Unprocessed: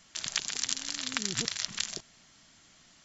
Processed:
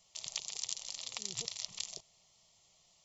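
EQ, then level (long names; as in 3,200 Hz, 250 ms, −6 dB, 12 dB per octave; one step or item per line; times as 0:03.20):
low-shelf EQ 91 Hz −6 dB
phaser with its sweep stopped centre 650 Hz, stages 4
−6.0 dB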